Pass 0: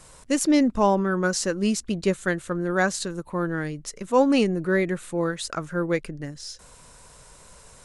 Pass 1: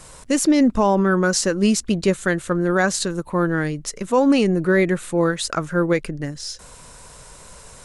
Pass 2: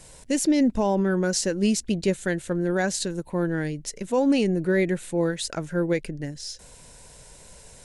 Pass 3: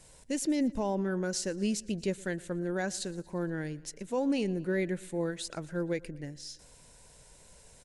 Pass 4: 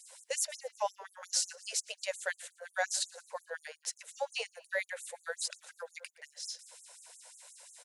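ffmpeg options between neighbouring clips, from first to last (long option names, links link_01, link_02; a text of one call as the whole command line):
ffmpeg -i in.wav -af "alimiter=level_in=14dB:limit=-1dB:release=50:level=0:latency=1,volume=-7.5dB" out.wav
ffmpeg -i in.wav -af "equalizer=frequency=1200:width=3.3:gain=-13.5,volume=-4.5dB" out.wav
ffmpeg -i in.wav -af "aecho=1:1:117|234|351|468:0.075|0.0427|0.0244|0.0139,volume=-8.5dB" out.wav
ffmpeg -i in.wav -af "afftfilt=real='re*gte(b*sr/1024,430*pow(6400/430,0.5+0.5*sin(2*PI*5.6*pts/sr)))':imag='im*gte(b*sr/1024,430*pow(6400/430,0.5+0.5*sin(2*PI*5.6*pts/sr)))':win_size=1024:overlap=0.75,volume=4.5dB" out.wav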